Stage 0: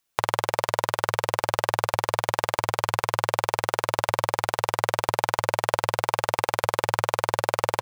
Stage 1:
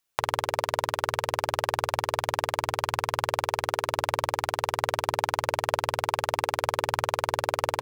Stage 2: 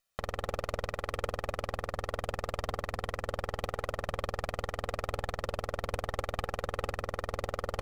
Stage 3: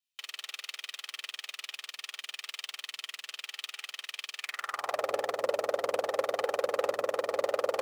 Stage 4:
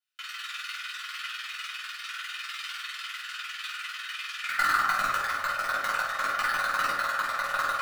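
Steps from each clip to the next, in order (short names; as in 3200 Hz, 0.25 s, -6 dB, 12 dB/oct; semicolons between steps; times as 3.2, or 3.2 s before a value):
notches 50/100/150/200/250/300/350/400/450 Hz; gain -2.5 dB
minimum comb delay 1.6 ms; high shelf 10000 Hz -4 dB; limiter -18.5 dBFS, peak gain reduction 9 dB
half-wave gain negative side -12 dB; sample leveller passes 3; high-pass sweep 2900 Hz -> 510 Hz, 4.37–5.06
ladder high-pass 1300 Hz, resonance 75%; in parallel at -8 dB: bit-crush 5-bit; on the sum: shoebox room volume 600 m³, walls furnished, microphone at 7.4 m; gain +4.5 dB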